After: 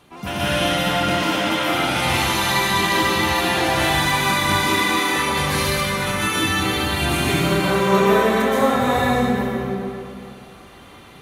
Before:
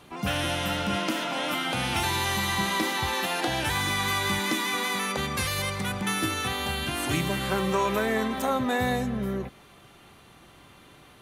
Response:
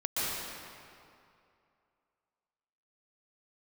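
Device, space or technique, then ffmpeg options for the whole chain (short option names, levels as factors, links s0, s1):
stairwell: -filter_complex "[1:a]atrim=start_sample=2205[s0];[0:a][s0]afir=irnorm=-1:irlink=0"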